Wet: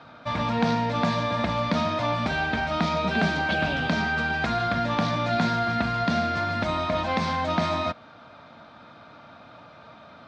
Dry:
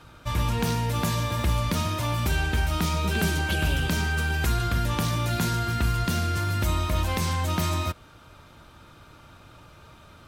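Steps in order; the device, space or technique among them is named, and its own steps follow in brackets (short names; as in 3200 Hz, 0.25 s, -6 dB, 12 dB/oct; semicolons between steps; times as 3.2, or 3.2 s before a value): kitchen radio (speaker cabinet 190–4300 Hz, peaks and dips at 230 Hz +5 dB, 370 Hz -9 dB, 680 Hz +8 dB, 2900 Hz -7 dB); gain +4 dB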